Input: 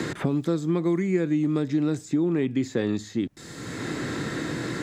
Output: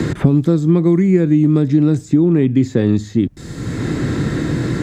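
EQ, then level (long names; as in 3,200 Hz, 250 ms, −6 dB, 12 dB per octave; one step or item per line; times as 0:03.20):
low-shelf EQ 80 Hz +11.5 dB
low-shelf EQ 370 Hz +10 dB
+3.5 dB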